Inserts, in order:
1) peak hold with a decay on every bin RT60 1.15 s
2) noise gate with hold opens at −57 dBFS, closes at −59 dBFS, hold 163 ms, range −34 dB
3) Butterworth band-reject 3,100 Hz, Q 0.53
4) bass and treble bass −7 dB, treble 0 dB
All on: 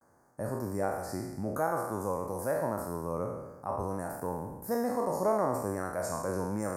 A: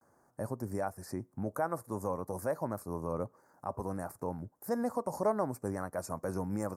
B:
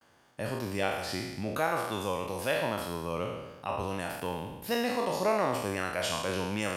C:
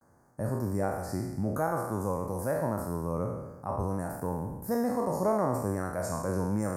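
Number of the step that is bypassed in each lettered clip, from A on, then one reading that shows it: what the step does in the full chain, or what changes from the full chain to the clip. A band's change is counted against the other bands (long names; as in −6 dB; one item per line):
1, 125 Hz band +2.5 dB
3, 2 kHz band +9.0 dB
4, change in momentary loudness spread −2 LU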